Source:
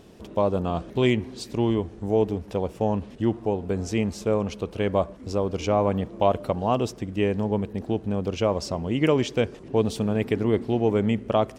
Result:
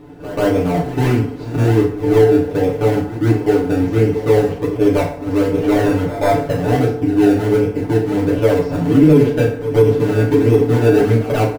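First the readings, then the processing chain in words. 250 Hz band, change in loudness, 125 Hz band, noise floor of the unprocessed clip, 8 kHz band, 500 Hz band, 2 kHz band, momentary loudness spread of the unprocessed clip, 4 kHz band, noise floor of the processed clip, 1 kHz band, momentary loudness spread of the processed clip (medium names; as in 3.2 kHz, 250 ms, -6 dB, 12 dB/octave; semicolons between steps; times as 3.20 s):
+10.5 dB, +10.0 dB, +12.0 dB, -44 dBFS, +5.5 dB, +10.0 dB, +10.0 dB, 5 LU, +3.0 dB, -27 dBFS, +6.0 dB, 6 LU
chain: one-sided wavefolder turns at -14.5 dBFS; low-pass 3.7 kHz 12 dB/octave; in parallel at +2 dB: decimation with a swept rate 29×, swing 100% 1.4 Hz; on the sum: treble shelf 2.4 kHz -10.5 dB; comb 6.9 ms, depth 55%; FDN reverb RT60 0.57 s, low-frequency decay 0.8×, high-frequency decay 0.7×, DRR -5.5 dB; dynamic bell 990 Hz, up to -7 dB, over -28 dBFS, Q 2.2; on a send: reverse echo 137 ms -14 dB; on the sum: loudness maximiser -2 dB; trim -1 dB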